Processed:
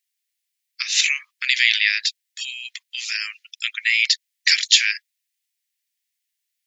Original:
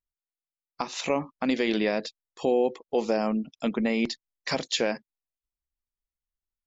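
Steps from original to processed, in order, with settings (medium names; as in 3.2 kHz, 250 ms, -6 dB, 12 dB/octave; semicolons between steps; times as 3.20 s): steep high-pass 1.8 kHz 48 dB/octave; loudness maximiser +17 dB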